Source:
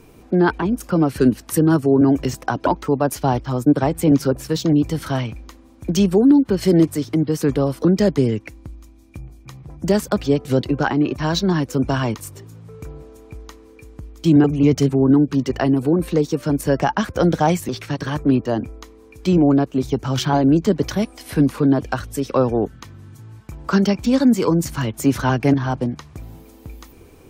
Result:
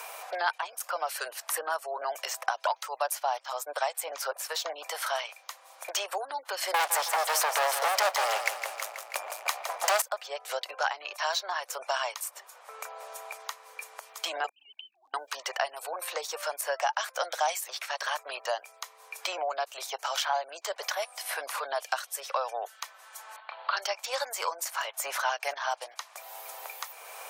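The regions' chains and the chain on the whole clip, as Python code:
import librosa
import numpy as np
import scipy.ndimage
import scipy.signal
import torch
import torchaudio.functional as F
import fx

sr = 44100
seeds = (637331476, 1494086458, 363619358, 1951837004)

y = fx.chain(x, sr, fx.leveller(passes=5),
    fx.echo_feedback(ms=161, feedback_pct=47, wet_db=-10), at=(6.74, 10.02))
y = fx.chain(y, sr, fx.sine_speech(),
    fx.cheby2_bandstop(low_hz=320.0, high_hz=2200.0, order=4, stop_db=40),
    fx.over_compress(threshold_db=-39.0, ratio=-1.0), at=(14.49, 15.14))
y = fx.chain(y, sr, fx.law_mismatch(coded='A'),
    fx.cheby_ripple(hz=4400.0, ripple_db=3), at=(23.36, 23.77))
y = scipy.signal.sosfilt(scipy.signal.butter(8, 610.0, 'highpass', fs=sr, output='sos'), y)
y = fx.peak_eq(y, sr, hz=12000.0, db=5.5, octaves=1.4)
y = fx.band_squash(y, sr, depth_pct=70)
y = y * librosa.db_to_amplitude(-5.0)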